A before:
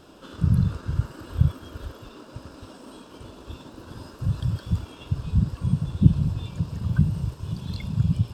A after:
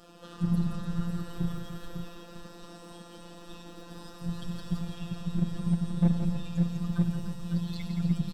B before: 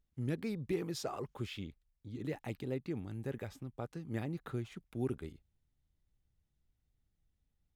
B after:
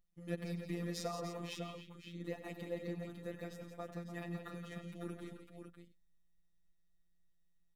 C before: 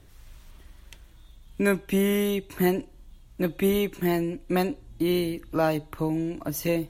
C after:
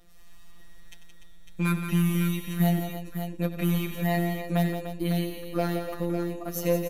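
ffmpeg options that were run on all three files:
-filter_complex "[0:a]aecho=1:1:4.2:0.89,aeval=exprs='0.631*(cos(1*acos(clip(val(0)/0.631,-1,1)))-cos(1*PI/2))+0.2*(cos(2*acos(clip(val(0)/0.631,-1,1)))-cos(2*PI/2))':c=same,aeval=exprs='clip(val(0),-1,0.2)':c=same,afftfilt=real='hypot(re,im)*cos(PI*b)':imag='0':win_size=1024:overlap=0.75,asplit=2[a][b];[b]aecho=0:1:94|171|295|552:0.251|0.398|0.299|0.422[c];[a][c]amix=inputs=2:normalize=0,volume=-1.5dB"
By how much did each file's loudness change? -6.0, -3.5, -1.5 LU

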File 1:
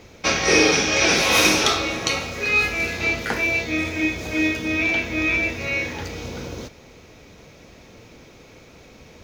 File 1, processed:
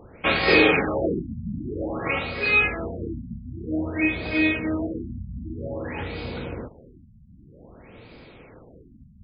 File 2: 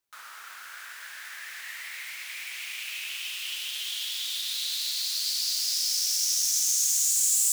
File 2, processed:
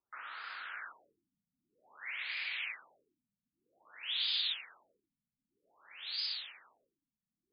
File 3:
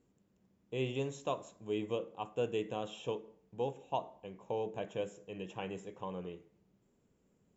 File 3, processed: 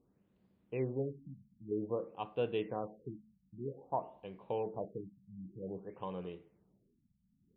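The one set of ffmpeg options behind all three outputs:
-af "afftfilt=real='re*lt(b*sr/1024,240*pow(5100/240,0.5+0.5*sin(2*PI*0.52*pts/sr)))':imag='im*lt(b*sr/1024,240*pow(5100/240,0.5+0.5*sin(2*PI*0.52*pts/sr)))':win_size=1024:overlap=0.75"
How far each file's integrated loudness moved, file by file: -4.5, -11.5, -1.0 LU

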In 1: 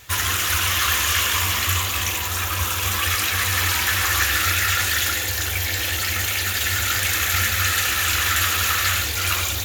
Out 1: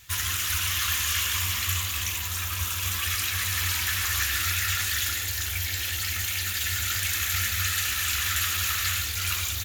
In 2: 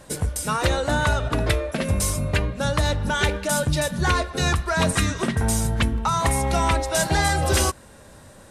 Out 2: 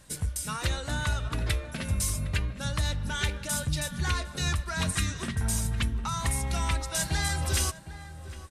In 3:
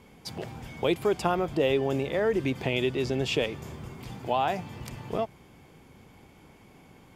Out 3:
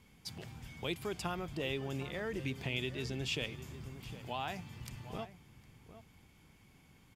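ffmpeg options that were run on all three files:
-filter_complex "[0:a]equalizer=f=540:t=o:w=2.5:g=-11.5,asplit=2[a][b];[b]adelay=758,volume=-13dB,highshelf=f=4k:g=-17.1[c];[a][c]amix=inputs=2:normalize=0,volume=-4.5dB"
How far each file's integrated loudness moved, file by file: -6.0, -7.5, -11.5 LU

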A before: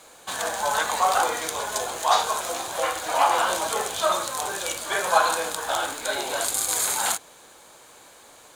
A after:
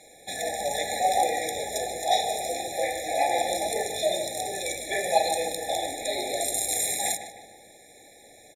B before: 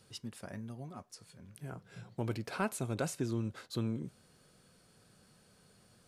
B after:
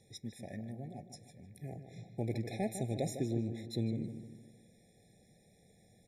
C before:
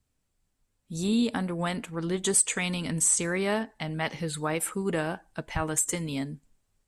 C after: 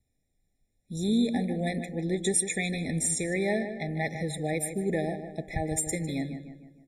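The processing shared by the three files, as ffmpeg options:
-filter_complex "[0:a]aresample=32000,aresample=44100,asplit=2[a][b];[b]adelay=153,lowpass=f=2.8k:p=1,volume=-9dB,asplit=2[c][d];[d]adelay=153,lowpass=f=2.8k:p=1,volume=0.49,asplit=2[e][f];[f]adelay=153,lowpass=f=2.8k:p=1,volume=0.49,asplit=2[g][h];[h]adelay=153,lowpass=f=2.8k:p=1,volume=0.49,asplit=2[i][j];[j]adelay=153,lowpass=f=2.8k:p=1,volume=0.49,asplit=2[k][l];[l]adelay=153,lowpass=f=2.8k:p=1,volume=0.49[m];[a][c][e][g][i][k][m]amix=inputs=7:normalize=0,afftfilt=real='re*eq(mod(floor(b*sr/1024/840),2),0)':imag='im*eq(mod(floor(b*sr/1024/840),2),0)':win_size=1024:overlap=0.75"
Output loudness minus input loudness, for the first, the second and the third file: -3.0, 0.0, -1.5 LU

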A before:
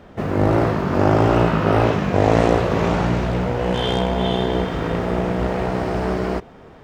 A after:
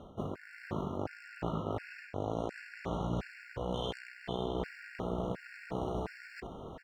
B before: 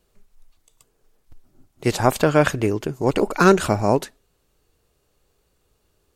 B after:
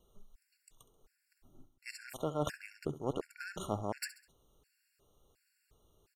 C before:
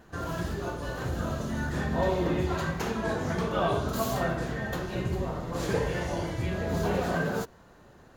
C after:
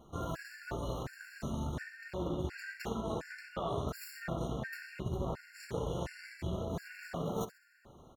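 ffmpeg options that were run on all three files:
-af "areverse,acompressor=threshold=-32dB:ratio=10,areverse,aeval=exprs='0.119*(cos(1*acos(clip(val(0)/0.119,-1,1)))-cos(1*PI/2))+0.00596*(cos(5*acos(clip(val(0)/0.119,-1,1)))-cos(5*PI/2))+0.0106*(cos(7*acos(clip(val(0)/0.119,-1,1)))-cos(7*PI/2))':c=same,aecho=1:1:67|134|201|268:0.178|0.0747|0.0314|0.0132,afftfilt=real='re*gt(sin(2*PI*1.4*pts/sr)*(1-2*mod(floor(b*sr/1024/1400),2)),0)':imag='im*gt(sin(2*PI*1.4*pts/sr)*(1-2*mod(floor(b*sr/1024/1400),2)),0)':win_size=1024:overlap=0.75,volume=1.5dB"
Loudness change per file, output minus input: -19.5, -20.5, -9.5 LU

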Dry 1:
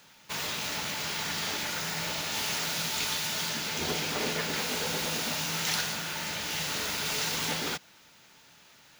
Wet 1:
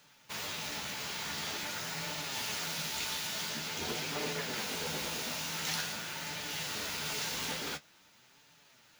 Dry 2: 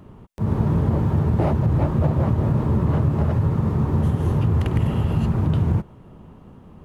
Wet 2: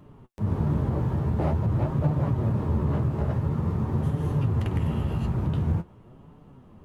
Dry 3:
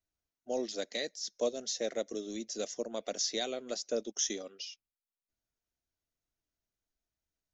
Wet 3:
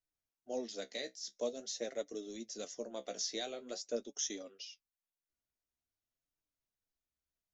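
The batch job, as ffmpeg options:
-af "flanger=delay=6.7:depth=9.1:regen=45:speed=0.47:shape=sinusoidal,volume=-1.5dB"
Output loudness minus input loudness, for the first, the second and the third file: -5.5, -5.5, -5.5 LU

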